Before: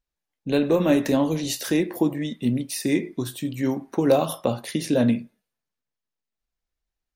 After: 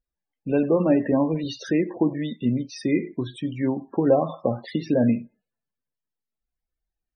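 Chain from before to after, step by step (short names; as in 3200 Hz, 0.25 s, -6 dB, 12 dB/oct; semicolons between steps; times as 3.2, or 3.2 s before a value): treble ducked by the level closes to 3000 Hz, closed at -20.5 dBFS; loudest bins only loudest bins 32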